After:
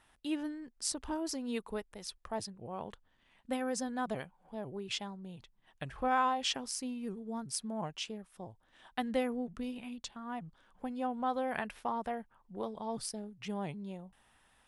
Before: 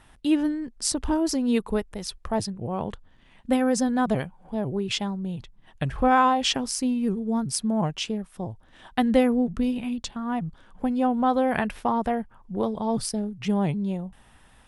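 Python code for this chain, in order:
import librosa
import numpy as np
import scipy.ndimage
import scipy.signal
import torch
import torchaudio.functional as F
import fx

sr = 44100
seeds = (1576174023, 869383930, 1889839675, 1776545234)

y = fx.low_shelf(x, sr, hz=320.0, db=-9.5)
y = F.gain(torch.from_numpy(y), -9.0).numpy()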